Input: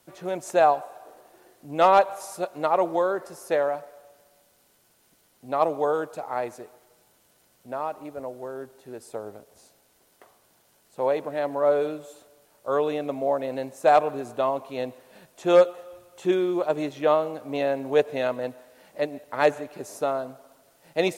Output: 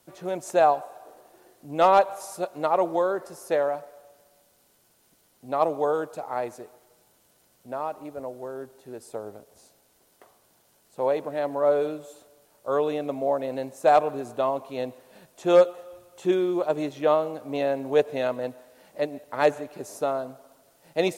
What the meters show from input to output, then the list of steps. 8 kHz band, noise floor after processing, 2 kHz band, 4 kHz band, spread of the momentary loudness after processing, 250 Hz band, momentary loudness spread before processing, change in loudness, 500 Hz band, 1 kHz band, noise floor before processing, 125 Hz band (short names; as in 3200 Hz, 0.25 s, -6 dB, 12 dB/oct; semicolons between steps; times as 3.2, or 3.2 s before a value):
n/a, -64 dBFS, -2.0 dB, -1.0 dB, 17 LU, 0.0 dB, 17 LU, -0.5 dB, -0.5 dB, -0.5 dB, -63 dBFS, 0.0 dB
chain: bell 2000 Hz -2.5 dB 1.6 oct